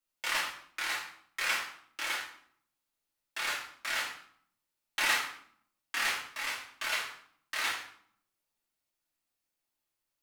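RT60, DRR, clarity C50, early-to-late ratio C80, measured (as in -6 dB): 0.60 s, -6.5 dB, 5.0 dB, 9.0 dB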